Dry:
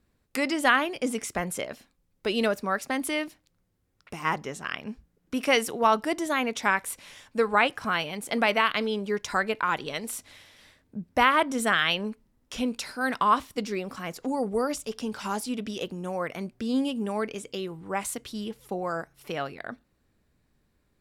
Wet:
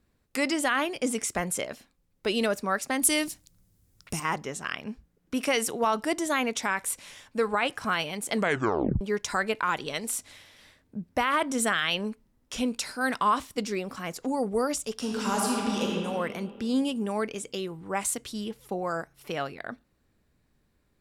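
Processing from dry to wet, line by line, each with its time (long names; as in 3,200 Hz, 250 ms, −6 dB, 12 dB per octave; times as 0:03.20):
0:03.02–0:04.20: bass and treble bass +10 dB, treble +14 dB
0:08.33: tape stop 0.68 s
0:14.94–0:15.87: thrown reverb, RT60 2.4 s, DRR −2.5 dB
whole clip: brickwall limiter −15 dBFS; dynamic equaliser 7,900 Hz, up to +6 dB, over −51 dBFS, Q 1.1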